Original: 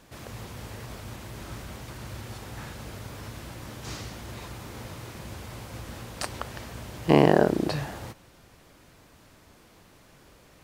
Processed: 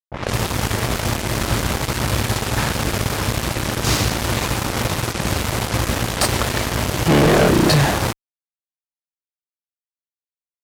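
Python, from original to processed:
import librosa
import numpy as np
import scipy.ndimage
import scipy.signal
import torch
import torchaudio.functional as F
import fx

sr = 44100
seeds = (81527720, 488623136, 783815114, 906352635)

y = fx.fuzz(x, sr, gain_db=37.0, gate_db=-41.0)
y = fx.env_lowpass(y, sr, base_hz=590.0, full_db=-19.0)
y = y * 10.0 ** (2.0 / 20.0)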